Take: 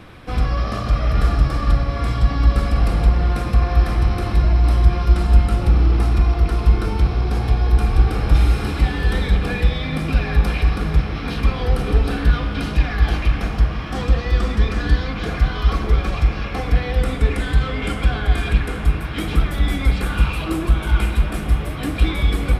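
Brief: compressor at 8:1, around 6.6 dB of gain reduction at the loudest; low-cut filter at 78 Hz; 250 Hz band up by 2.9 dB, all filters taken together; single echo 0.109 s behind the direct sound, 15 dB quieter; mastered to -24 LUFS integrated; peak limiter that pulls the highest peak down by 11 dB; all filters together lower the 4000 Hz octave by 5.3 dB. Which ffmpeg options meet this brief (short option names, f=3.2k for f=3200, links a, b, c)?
-af "highpass=78,equalizer=f=250:t=o:g=4,equalizer=f=4k:t=o:g=-7,acompressor=threshold=-20dB:ratio=8,alimiter=limit=-23dB:level=0:latency=1,aecho=1:1:109:0.178,volume=7.5dB"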